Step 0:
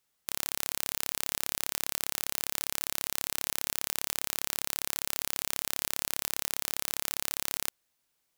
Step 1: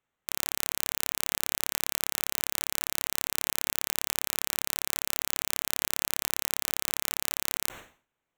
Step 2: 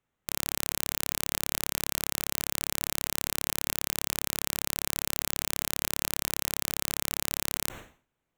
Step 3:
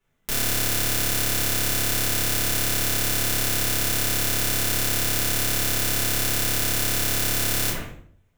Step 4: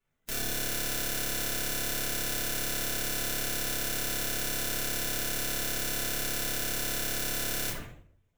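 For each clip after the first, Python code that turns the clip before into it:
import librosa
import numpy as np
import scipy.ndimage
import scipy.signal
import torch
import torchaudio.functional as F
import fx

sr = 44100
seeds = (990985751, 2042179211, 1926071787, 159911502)

y1 = fx.wiener(x, sr, points=9)
y1 = fx.sustainer(y1, sr, db_per_s=140.0)
y1 = y1 * 10.0 ** (1.5 / 20.0)
y2 = fx.low_shelf(y1, sr, hz=350.0, db=9.0)
y2 = y2 * 10.0 ** (-1.0 / 20.0)
y3 = fx.room_shoebox(y2, sr, seeds[0], volume_m3=50.0, walls='mixed', distance_m=1.9)
y4 = fx.spec_quant(y3, sr, step_db=15)
y4 = y4 * 10.0 ** (-8.0 / 20.0)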